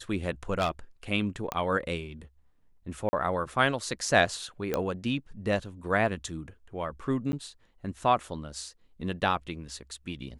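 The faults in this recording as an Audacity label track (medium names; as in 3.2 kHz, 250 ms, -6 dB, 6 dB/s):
0.540000	0.690000	clipped -21 dBFS
1.520000	1.520000	pop -15 dBFS
3.090000	3.130000	dropout 40 ms
4.740000	4.740000	pop -14 dBFS
7.320000	7.330000	dropout 10 ms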